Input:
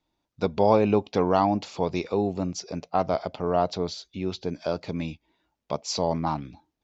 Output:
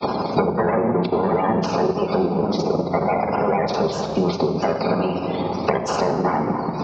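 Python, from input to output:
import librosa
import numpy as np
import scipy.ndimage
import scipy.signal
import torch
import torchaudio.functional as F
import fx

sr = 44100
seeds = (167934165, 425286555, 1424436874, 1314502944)

p1 = fx.bin_compress(x, sr, power=0.4)
p2 = scipy.signal.sosfilt(scipy.signal.butter(2, 6000.0, 'lowpass', fs=sr, output='sos'), p1)
p3 = fx.granulator(p2, sr, seeds[0], grain_ms=100.0, per_s=20.0, spray_ms=36.0, spread_st=3)
p4 = np.clip(p3, -10.0 ** (-18.5 / 20.0), 10.0 ** (-18.5 / 20.0))
p5 = fx.notch(p4, sr, hz=600.0, q=13.0)
p6 = p5 + fx.echo_single(p5, sr, ms=247, db=-23.5, dry=0)
p7 = fx.spec_gate(p6, sr, threshold_db=-20, keep='strong')
p8 = scipy.signal.sosfilt(scipy.signal.butter(2, 90.0, 'highpass', fs=sr, output='sos'), p7)
p9 = fx.room_shoebox(p8, sr, seeds[1], volume_m3=1600.0, walls='mixed', distance_m=1.3)
p10 = fx.transient(p9, sr, attack_db=4, sustain_db=-4)
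p11 = fx.band_squash(p10, sr, depth_pct=100)
y = p11 * librosa.db_to_amplitude(1.5)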